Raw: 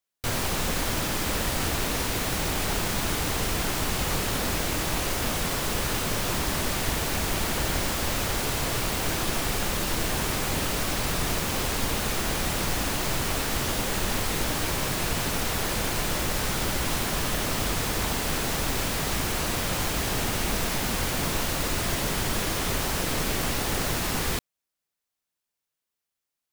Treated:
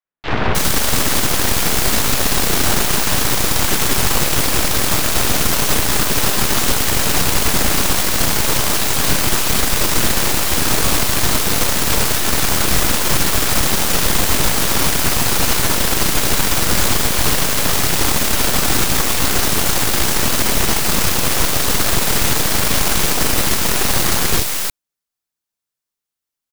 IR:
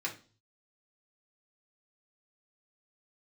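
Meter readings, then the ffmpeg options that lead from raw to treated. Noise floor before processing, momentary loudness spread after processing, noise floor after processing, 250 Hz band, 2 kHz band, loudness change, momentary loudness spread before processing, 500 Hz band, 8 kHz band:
under -85 dBFS, 1 LU, -85 dBFS, +8.5 dB, +9.5 dB, +11.5 dB, 0 LU, +8.0 dB, +13.0 dB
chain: -filter_complex "[0:a]acrossover=split=620|2400[s0][s1][s2];[s0]adelay=40[s3];[s2]adelay=310[s4];[s3][s1][s4]amix=inputs=3:normalize=0,acontrast=70,aeval=exprs='0.422*(cos(1*acos(clip(val(0)/0.422,-1,1)))-cos(1*PI/2))+0.075*(cos(3*acos(clip(val(0)/0.422,-1,1)))-cos(3*PI/2))+0.168*(cos(8*acos(clip(val(0)/0.422,-1,1)))-cos(8*PI/2))':c=same,volume=1.12"

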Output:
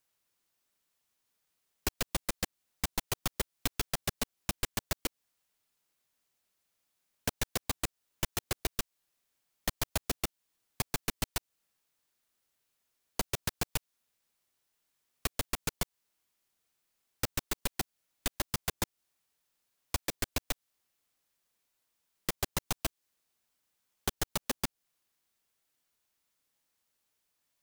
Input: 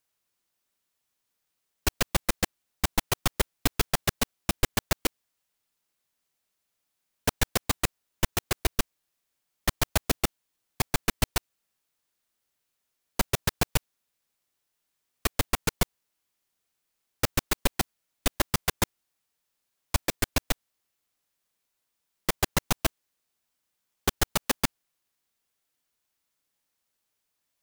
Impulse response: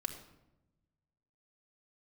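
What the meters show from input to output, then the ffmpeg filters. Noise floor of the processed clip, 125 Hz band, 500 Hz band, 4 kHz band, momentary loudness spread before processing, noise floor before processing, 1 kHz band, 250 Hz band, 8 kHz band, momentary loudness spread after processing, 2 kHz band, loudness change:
under -85 dBFS, -8.5 dB, -8.0 dB, -6.5 dB, 5 LU, -81 dBFS, -8.5 dB, -8.0 dB, -5.5 dB, 5 LU, -8.0 dB, -7.0 dB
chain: -filter_complex "[0:a]acrossover=split=760|3000[s0][s1][s2];[s0]acompressor=threshold=0.02:ratio=4[s3];[s1]acompressor=threshold=0.00891:ratio=4[s4];[s2]acompressor=threshold=0.02:ratio=4[s5];[s3][s4][s5]amix=inputs=3:normalize=0"

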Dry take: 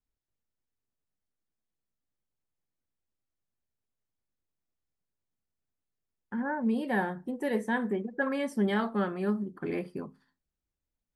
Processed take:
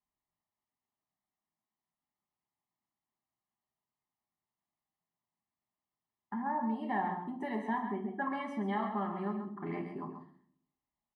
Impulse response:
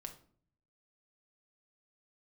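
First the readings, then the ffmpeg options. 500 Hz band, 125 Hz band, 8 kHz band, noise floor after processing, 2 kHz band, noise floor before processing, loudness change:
-8.5 dB, -5.5 dB, no reading, under -85 dBFS, -7.5 dB, under -85 dBFS, -5.0 dB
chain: -filter_complex "[0:a]aecho=1:1:1:0.99,acompressor=threshold=0.02:ratio=2,bandpass=f=730:t=q:w=0.86:csg=0,asplit=2[s0][s1];[s1]adelay=134.1,volume=0.398,highshelf=f=4000:g=-3.02[s2];[s0][s2]amix=inputs=2:normalize=0[s3];[1:a]atrim=start_sample=2205[s4];[s3][s4]afir=irnorm=-1:irlink=0,volume=2.24"

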